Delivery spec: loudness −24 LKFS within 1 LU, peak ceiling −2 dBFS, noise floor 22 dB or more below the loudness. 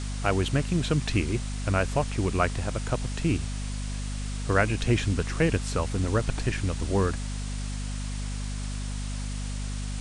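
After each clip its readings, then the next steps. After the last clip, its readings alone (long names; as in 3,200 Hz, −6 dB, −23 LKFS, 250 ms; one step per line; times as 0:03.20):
mains hum 50 Hz; hum harmonics up to 250 Hz; level of the hum −30 dBFS; background noise floor −33 dBFS; target noise floor −51 dBFS; integrated loudness −28.5 LKFS; sample peak −8.0 dBFS; target loudness −24.0 LKFS
→ hum removal 50 Hz, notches 5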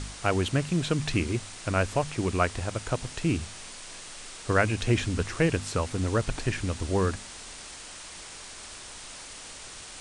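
mains hum none found; background noise floor −44 dBFS; target noise floor −51 dBFS
→ noise reduction from a noise print 7 dB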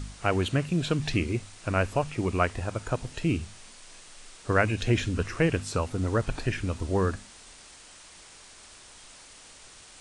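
background noise floor −51 dBFS; integrated loudness −28.5 LKFS; sample peak −8.0 dBFS; target loudness −24.0 LKFS
→ level +4.5 dB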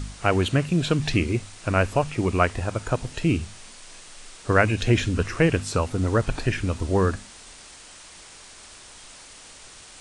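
integrated loudness −24.0 LKFS; sample peak −3.5 dBFS; background noise floor −46 dBFS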